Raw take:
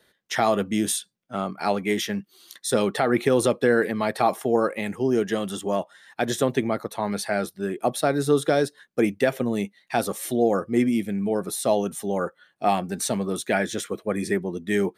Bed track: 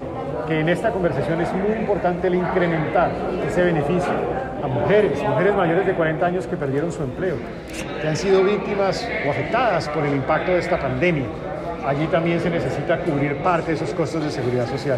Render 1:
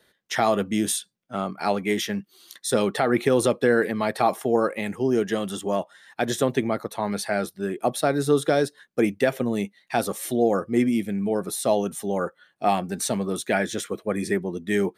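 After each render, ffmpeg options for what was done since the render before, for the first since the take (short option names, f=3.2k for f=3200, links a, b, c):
-af anull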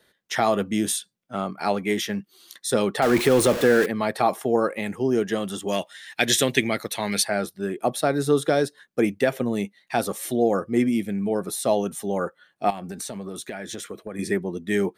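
-filter_complex "[0:a]asettb=1/sr,asplit=3[a][b][c];[a]atrim=end=3.024[d];[b]atrim=start=3.02:end=3.86,asetpts=PTS-STARTPTS,afade=t=in:d=0.004:c=qsin,afade=t=out:st=0.836:d=0.004:c=qsin,aeval=exprs='val(0)+0.5*0.0708*sgn(val(0))':c=same[e];[c]atrim=start=3.856[f];[d][e]acrossfade=d=0.004:c1=hsin:c2=qsin[g];[g][f]acrossfade=d=0.004:c1=qsin:c2=hsin,asplit=3[h][i][j];[h]afade=t=out:st=5.67:d=0.02[k];[i]highshelf=f=1.6k:t=q:w=1.5:g=10,afade=t=in:st=5.67:d=0.02,afade=t=out:st=7.22:d=0.02[l];[j]afade=t=in:st=7.22:d=0.02[m];[k][l][m]amix=inputs=3:normalize=0,asettb=1/sr,asplit=3[n][o][p];[n]atrim=end=12.704[q];[o]atrim=start=12.7:end=14.19,asetpts=PTS-STARTPTS,afade=t=in:d=0.004:c=qsin,afade=t=out:st=1.486:d=0.004:c=qsin,acompressor=threshold=-29dB:ratio=10:attack=3.2:release=140:knee=1:detection=peak[r];[p]atrim=start=14.186[s];[q][r]acrossfade=d=0.004:c1=hsin:c2=qsin[t];[t][s]acrossfade=d=0.004:c1=qsin:c2=hsin"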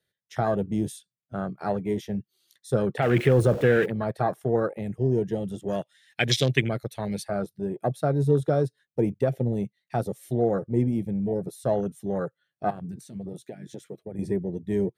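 -af "afwtdn=0.0501,equalizer=f=125:t=o:w=1:g=11,equalizer=f=250:t=o:w=1:g=-7,equalizer=f=1k:t=o:w=1:g=-8"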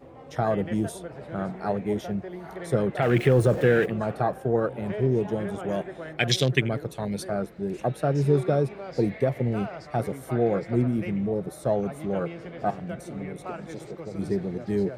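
-filter_complex "[1:a]volume=-18.5dB[a];[0:a][a]amix=inputs=2:normalize=0"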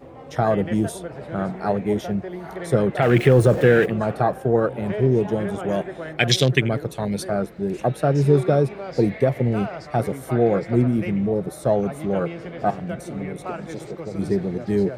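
-af "volume=5dB,alimiter=limit=-1dB:level=0:latency=1"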